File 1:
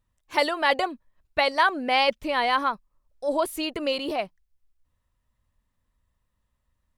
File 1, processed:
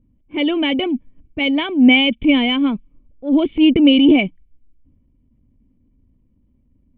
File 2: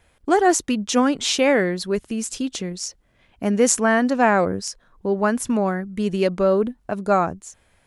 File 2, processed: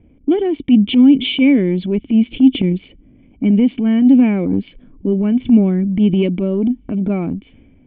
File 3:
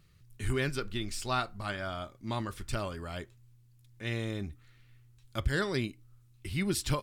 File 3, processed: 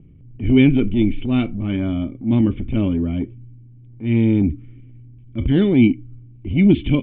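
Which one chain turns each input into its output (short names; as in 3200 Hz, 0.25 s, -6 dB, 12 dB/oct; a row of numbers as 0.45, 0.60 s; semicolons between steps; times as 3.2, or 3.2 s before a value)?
low-pass opened by the level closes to 1000 Hz, open at -18.5 dBFS; compressor 5:1, threshold -26 dBFS; vocal tract filter i; transient shaper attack -9 dB, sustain +3 dB; normalise peaks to -1.5 dBFS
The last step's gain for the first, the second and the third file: +29.0, +25.0, +29.5 dB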